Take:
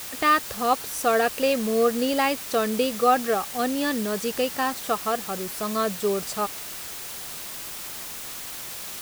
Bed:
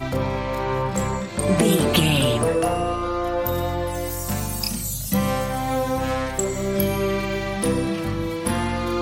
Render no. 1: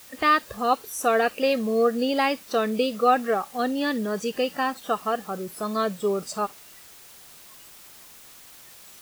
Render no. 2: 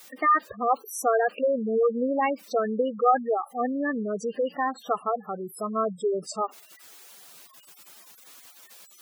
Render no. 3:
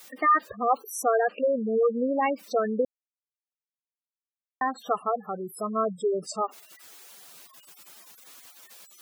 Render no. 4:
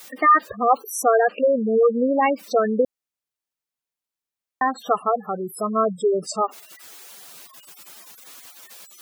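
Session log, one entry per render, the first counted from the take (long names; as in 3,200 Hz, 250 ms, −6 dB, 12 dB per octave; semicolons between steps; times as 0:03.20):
noise reduction from a noise print 12 dB
high-pass filter 180 Hz 6 dB per octave; gate on every frequency bin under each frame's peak −10 dB strong
0:01.03–0:02.26: high-frequency loss of the air 140 metres; 0:02.85–0:04.61: silence
level +6 dB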